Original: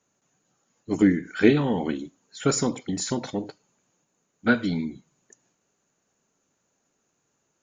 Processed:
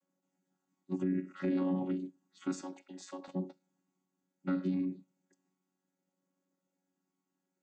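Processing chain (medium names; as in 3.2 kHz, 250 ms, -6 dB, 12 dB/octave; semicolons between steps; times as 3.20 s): vocoder on a held chord bare fifth, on F#3; 2.61–3.28 s: high-pass 600 Hz 12 dB/octave; peak limiter -18 dBFS, peak gain reduction 10.5 dB; trim -6 dB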